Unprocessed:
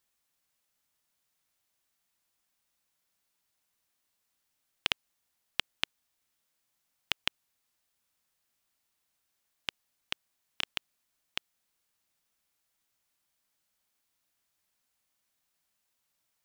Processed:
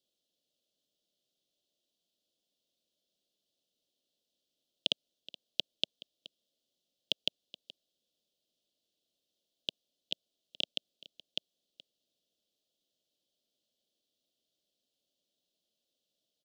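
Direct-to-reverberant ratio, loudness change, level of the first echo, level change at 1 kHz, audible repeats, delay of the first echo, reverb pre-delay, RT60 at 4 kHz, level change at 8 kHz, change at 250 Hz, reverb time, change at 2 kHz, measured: none, -0.5 dB, -19.0 dB, -14.5 dB, 1, 0.424 s, none, none, -6.5 dB, +2.0 dB, none, -10.0 dB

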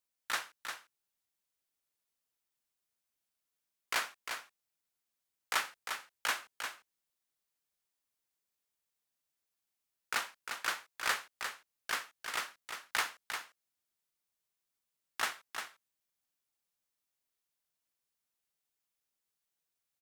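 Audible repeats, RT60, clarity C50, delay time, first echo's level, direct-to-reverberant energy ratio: 1, none, none, 0.351 s, -7.0 dB, none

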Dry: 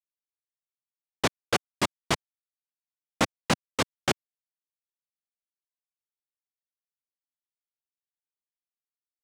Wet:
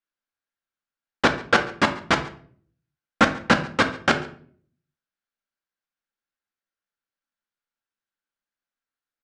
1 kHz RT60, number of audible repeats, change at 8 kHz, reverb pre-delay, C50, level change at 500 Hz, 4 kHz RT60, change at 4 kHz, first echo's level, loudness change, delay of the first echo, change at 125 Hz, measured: 0.45 s, 1, -3.0 dB, 3 ms, 12.0 dB, +6.5 dB, 0.40 s, +3.5 dB, -21.5 dB, +7.5 dB, 0.139 s, +4.5 dB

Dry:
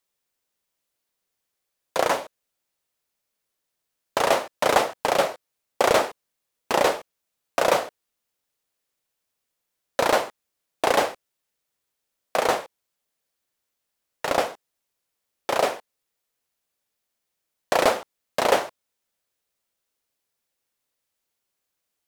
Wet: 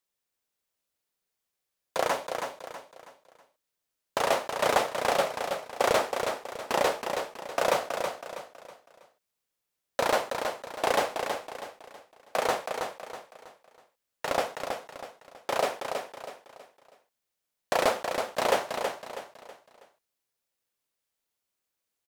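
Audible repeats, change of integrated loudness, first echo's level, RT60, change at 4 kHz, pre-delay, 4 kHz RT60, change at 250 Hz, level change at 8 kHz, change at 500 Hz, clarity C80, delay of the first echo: 4, -5.5 dB, -6.0 dB, none, -4.0 dB, none, none, -5.5 dB, -4.0 dB, -4.0 dB, none, 0.323 s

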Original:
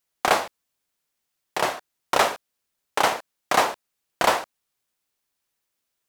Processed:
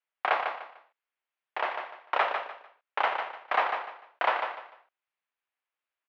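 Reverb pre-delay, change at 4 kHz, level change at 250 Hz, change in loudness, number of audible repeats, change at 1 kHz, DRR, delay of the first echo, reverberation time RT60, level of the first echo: none, -11.0 dB, -17.5 dB, -6.5 dB, 3, -5.0 dB, none, 0.149 s, none, -6.5 dB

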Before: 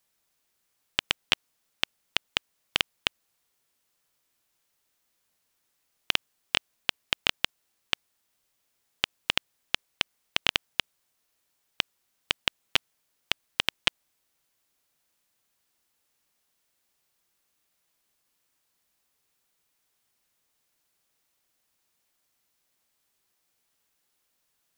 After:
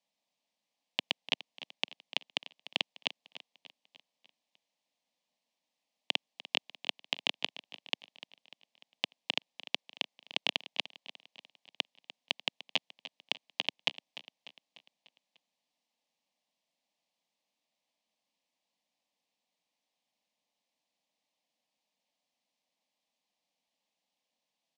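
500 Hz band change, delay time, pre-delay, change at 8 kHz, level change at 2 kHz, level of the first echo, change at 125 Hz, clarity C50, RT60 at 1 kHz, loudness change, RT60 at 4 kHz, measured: -3.5 dB, 0.297 s, none, -12.0 dB, -7.0 dB, -15.5 dB, -12.0 dB, none, none, -6.0 dB, none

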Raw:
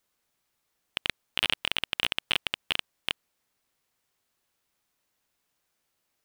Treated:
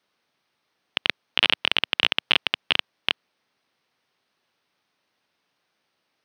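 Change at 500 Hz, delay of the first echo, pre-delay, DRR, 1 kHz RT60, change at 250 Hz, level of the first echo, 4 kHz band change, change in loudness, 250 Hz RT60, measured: +7.0 dB, none, none, none, none, +6.5 dB, none, +6.5 dB, +6.5 dB, none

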